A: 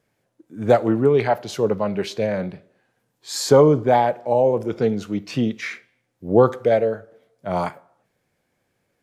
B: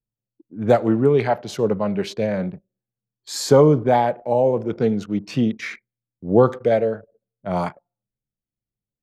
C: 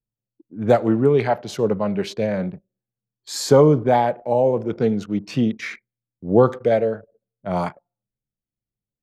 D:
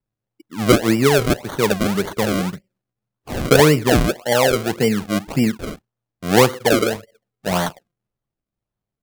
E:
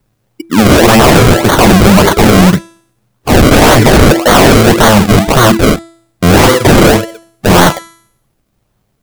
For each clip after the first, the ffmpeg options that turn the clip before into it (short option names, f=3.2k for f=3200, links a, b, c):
-af "anlmdn=0.631,equalizer=f=180:t=o:w=1.3:g=4,volume=-1dB"
-af anull
-filter_complex "[0:a]asplit=2[a][b];[b]acompressor=threshold=-25dB:ratio=6,volume=-2.5dB[c];[a][c]amix=inputs=2:normalize=0,acrusher=samples=34:mix=1:aa=0.000001:lfo=1:lforange=34:lforate=1.8"
-af "bandreject=f=332.9:t=h:w=4,bandreject=f=665.8:t=h:w=4,bandreject=f=998.7:t=h:w=4,bandreject=f=1.3316k:t=h:w=4,bandreject=f=1.6645k:t=h:w=4,bandreject=f=1.9974k:t=h:w=4,bandreject=f=2.3303k:t=h:w=4,bandreject=f=2.6632k:t=h:w=4,bandreject=f=2.9961k:t=h:w=4,bandreject=f=3.329k:t=h:w=4,bandreject=f=3.6619k:t=h:w=4,bandreject=f=3.9948k:t=h:w=4,bandreject=f=4.3277k:t=h:w=4,bandreject=f=4.6606k:t=h:w=4,bandreject=f=4.9935k:t=h:w=4,bandreject=f=5.3264k:t=h:w=4,bandreject=f=5.6593k:t=h:w=4,bandreject=f=5.9922k:t=h:w=4,bandreject=f=6.3251k:t=h:w=4,bandreject=f=6.658k:t=h:w=4,bandreject=f=6.9909k:t=h:w=4,bandreject=f=7.3238k:t=h:w=4,bandreject=f=7.6567k:t=h:w=4,bandreject=f=7.9896k:t=h:w=4,bandreject=f=8.3225k:t=h:w=4,bandreject=f=8.6554k:t=h:w=4,bandreject=f=8.9883k:t=h:w=4,bandreject=f=9.3212k:t=h:w=4,bandreject=f=9.6541k:t=h:w=4,bandreject=f=9.987k:t=h:w=4,bandreject=f=10.3199k:t=h:w=4,bandreject=f=10.6528k:t=h:w=4,bandreject=f=10.9857k:t=h:w=4,bandreject=f=11.3186k:t=h:w=4,aeval=exprs='0.891*sin(PI/2*10*val(0)/0.891)':c=same"